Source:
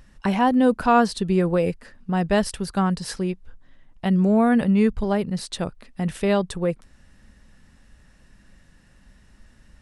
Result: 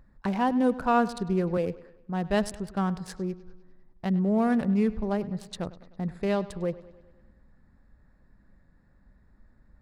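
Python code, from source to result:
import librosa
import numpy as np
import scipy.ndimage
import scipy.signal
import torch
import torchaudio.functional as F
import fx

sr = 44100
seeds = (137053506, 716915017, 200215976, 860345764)

y = fx.wiener(x, sr, points=15)
y = fx.echo_bbd(y, sr, ms=101, stages=4096, feedback_pct=58, wet_db=-18)
y = fx.band_widen(y, sr, depth_pct=40, at=(1.57, 2.52))
y = F.gain(torch.from_numpy(y), -6.0).numpy()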